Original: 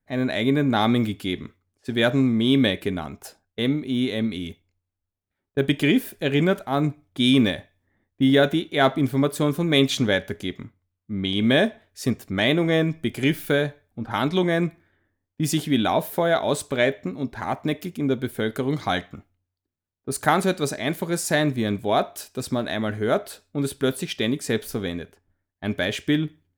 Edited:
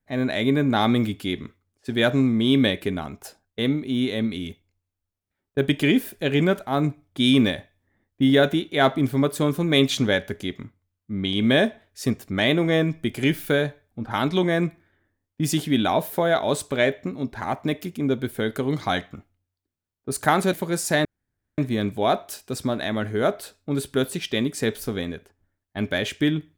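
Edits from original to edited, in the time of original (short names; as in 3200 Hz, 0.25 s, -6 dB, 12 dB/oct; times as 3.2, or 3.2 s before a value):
20.53–20.93 cut
21.45 insert room tone 0.53 s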